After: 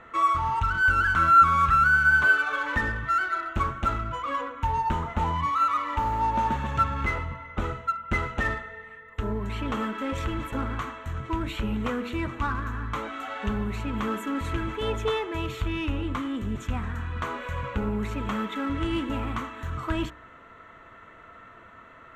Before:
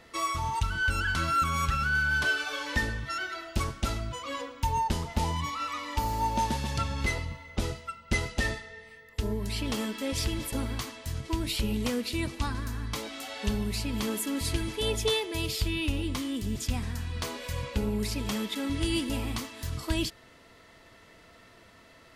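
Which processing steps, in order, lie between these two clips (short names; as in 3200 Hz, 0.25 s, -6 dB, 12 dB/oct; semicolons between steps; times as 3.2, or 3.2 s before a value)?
running mean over 9 samples; bell 1300 Hz +12.5 dB 0.77 oct; de-hum 60.39 Hz, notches 33; in parallel at -8.5 dB: overloaded stage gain 33.5 dB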